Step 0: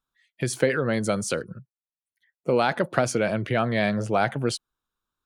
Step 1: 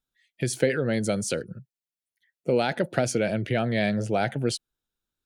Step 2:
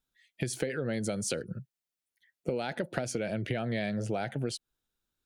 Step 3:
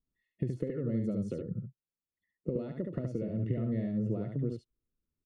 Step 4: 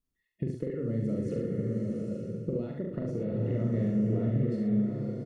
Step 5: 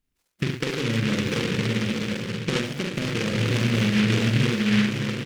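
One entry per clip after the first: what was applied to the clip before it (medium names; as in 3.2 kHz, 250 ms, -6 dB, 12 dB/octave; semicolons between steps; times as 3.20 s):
peaking EQ 1.1 kHz -14.5 dB 0.57 oct
compression 10:1, threshold -30 dBFS, peak gain reduction 14 dB; trim +1.5 dB
boxcar filter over 56 samples; on a send: delay 71 ms -4.5 dB; on the sum: trim +1.5 dB
doubling 43 ms -4 dB; swelling reverb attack 860 ms, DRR 0.5 dB
delay time shaken by noise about 2.2 kHz, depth 0.26 ms; trim +6.5 dB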